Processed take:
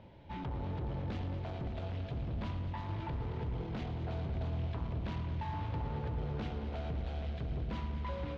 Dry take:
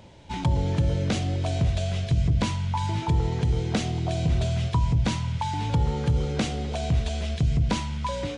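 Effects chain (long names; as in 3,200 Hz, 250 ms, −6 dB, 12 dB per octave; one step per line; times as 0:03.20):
soft clipping −30.5 dBFS, distortion −6 dB
high-frequency loss of the air 320 metres
on a send: echo machine with several playback heads 111 ms, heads all three, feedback 69%, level −14 dB
on the sum: level −5.5 dB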